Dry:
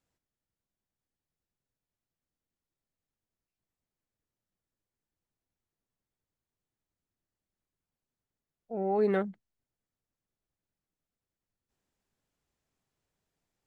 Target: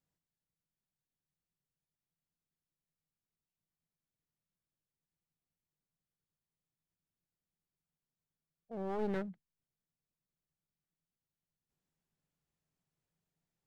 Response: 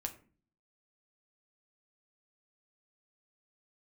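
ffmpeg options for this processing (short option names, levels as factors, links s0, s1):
-af "aeval=exprs='clip(val(0),-1,0.0126)':c=same,equalizer=f=160:w=3.7:g=12.5,volume=0.422"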